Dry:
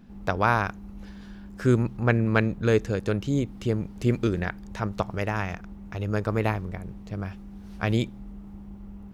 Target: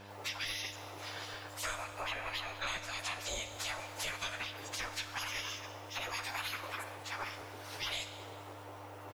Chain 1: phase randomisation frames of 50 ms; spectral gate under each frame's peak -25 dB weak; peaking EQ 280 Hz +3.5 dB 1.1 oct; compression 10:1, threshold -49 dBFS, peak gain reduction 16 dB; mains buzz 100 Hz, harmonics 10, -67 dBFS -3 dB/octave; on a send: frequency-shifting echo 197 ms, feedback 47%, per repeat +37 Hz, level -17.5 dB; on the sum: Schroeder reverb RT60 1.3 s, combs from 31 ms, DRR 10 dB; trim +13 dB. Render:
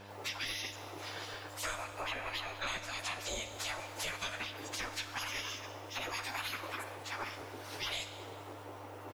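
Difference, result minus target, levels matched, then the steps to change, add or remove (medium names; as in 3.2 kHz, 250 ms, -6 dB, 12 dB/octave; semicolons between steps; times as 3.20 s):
250 Hz band +2.5 dB
change: peaking EQ 280 Hz -4.5 dB 1.1 oct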